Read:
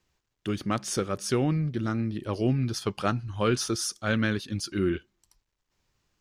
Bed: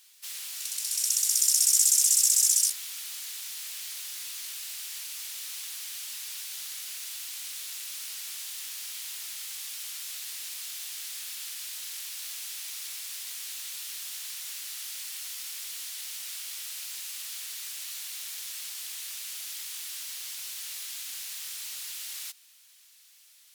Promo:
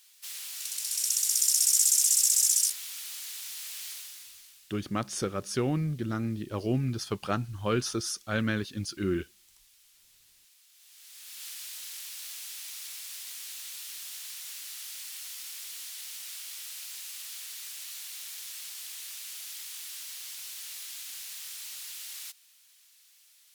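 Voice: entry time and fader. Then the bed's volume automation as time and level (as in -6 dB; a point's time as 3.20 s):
4.25 s, -3.0 dB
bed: 3.90 s -1.5 dB
4.80 s -23 dB
10.69 s -23 dB
11.46 s -3 dB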